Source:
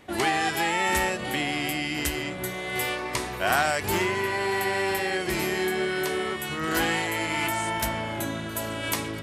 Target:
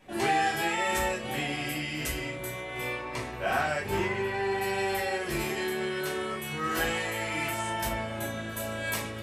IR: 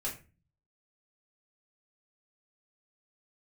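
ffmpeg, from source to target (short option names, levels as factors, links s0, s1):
-filter_complex "[0:a]asettb=1/sr,asplit=3[s0][s1][s2];[s0]atrim=end=2.604[s3];[s1]atrim=start=2.6:end=4.62,asetpts=PTS-STARTPTS,afade=t=in:d=0.004:c=qsin,afade=t=out:st=2.016:d=0.004:c=qsin,highshelf=f=4600:g=-10[s4];[s2]atrim=start=4.616[s5];[s3][s4]acrossfade=d=0.004:c1=hsin:c2=qsin[s6];[s6][s5]acrossfade=d=0.004:c1=qsin:c2=hsin[s7];[1:a]atrim=start_sample=2205,afade=t=out:st=0.14:d=0.01,atrim=end_sample=6615[s8];[s7][s8]afir=irnorm=-1:irlink=0,volume=0.531"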